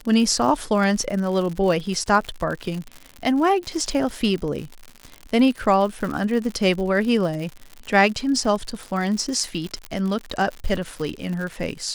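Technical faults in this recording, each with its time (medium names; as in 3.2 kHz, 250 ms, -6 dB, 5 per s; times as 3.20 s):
crackle 100 per s -28 dBFS
9.85 s: pop -16 dBFS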